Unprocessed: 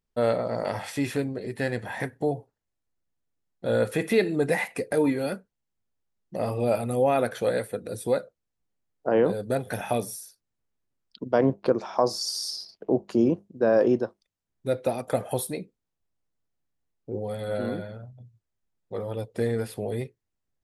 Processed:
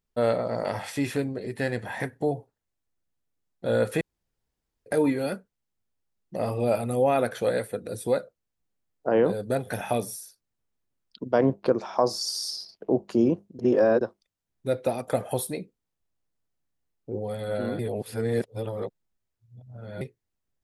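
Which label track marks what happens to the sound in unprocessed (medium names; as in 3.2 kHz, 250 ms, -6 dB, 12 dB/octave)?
4.010000	4.860000	room tone
13.590000	14.010000	reverse
17.790000	20.010000	reverse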